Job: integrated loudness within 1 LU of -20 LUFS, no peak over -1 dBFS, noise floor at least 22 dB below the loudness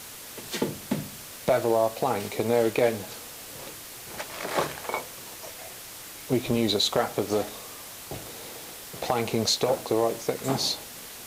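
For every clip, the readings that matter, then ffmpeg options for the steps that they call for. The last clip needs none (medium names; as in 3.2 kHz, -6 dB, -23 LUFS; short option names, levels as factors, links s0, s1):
noise floor -42 dBFS; noise floor target -50 dBFS; loudness -27.5 LUFS; peak level -8.5 dBFS; loudness target -20.0 LUFS
-> -af "afftdn=nr=8:nf=-42"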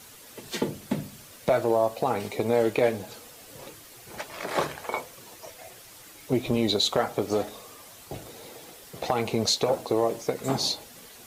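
noise floor -49 dBFS; loudness -27.0 LUFS; peak level -9.0 dBFS; loudness target -20.0 LUFS
-> -af "volume=2.24"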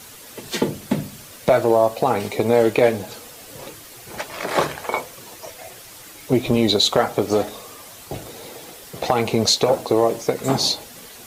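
loudness -20.0 LUFS; peak level -2.0 dBFS; noise floor -42 dBFS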